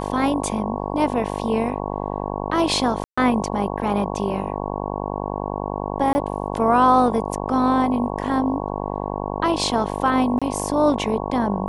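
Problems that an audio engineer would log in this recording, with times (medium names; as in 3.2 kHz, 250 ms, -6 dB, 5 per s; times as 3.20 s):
buzz 50 Hz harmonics 22 -27 dBFS
3.04–3.17 s: dropout 135 ms
6.13–6.15 s: dropout 20 ms
10.39–10.42 s: dropout 26 ms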